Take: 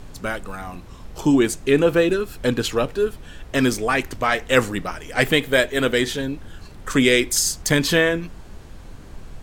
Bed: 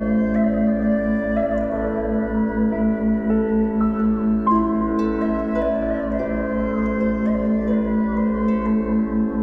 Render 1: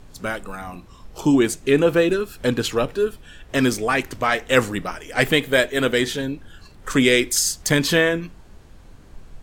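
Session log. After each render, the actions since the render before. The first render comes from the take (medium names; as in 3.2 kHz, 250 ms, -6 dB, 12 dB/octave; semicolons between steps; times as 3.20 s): noise print and reduce 6 dB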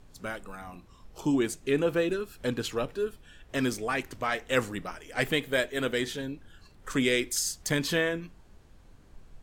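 trim -9.5 dB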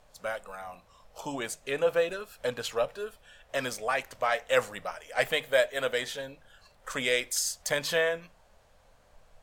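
resonant low shelf 440 Hz -8.5 dB, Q 3; hum notches 50/100/150 Hz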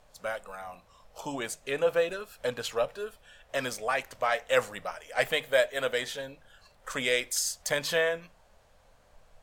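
no audible change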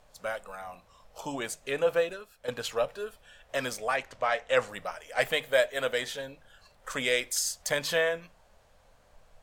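1.99–2.48 s: fade out quadratic, to -10.5 dB; 3.96–4.69 s: distance through air 55 m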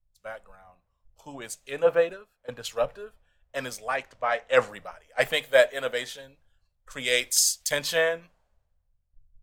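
three bands expanded up and down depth 100%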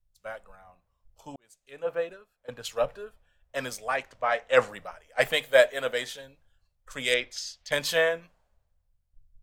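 1.36–2.90 s: fade in; 7.14–7.72 s: distance through air 240 m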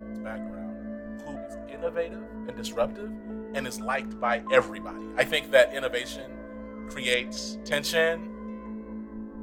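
add bed -18.5 dB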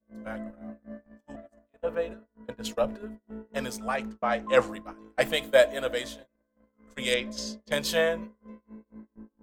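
gate -35 dBFS, range -37 dB; dynamic bell 1.9 kHz, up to -4 dB, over -38 dBFS, Q 1.2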